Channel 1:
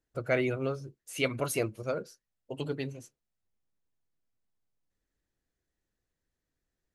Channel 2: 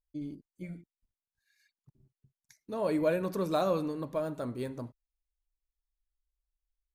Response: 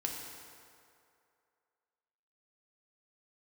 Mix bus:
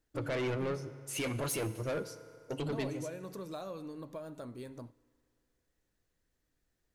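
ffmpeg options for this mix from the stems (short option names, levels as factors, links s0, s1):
-filter_complex "[0:a]alimiter=limit=0.0668:level=0:latency=1:release=14,asoftclip=type=tanh:threshold=0.0188,volume=1.19,asplit=2[s0][s1];[s1]volume=0.335[s2];[1:a]equalizer=f=6500:w=0.46:g=4,acompressor=threshold=0.0126:ratio=3,volume=0.562,asplit=2[s3][s4];[s4]volume=0.075[s5];[2:a]atrim=start_sample=2205[s6];[s2][s5]amix=inputs=2:normalize=0[s7];[s7][s6]afir=irnorm=-1:irlink=0[s8];[s0][s3][s8]amix=inputs=3:normalize=0"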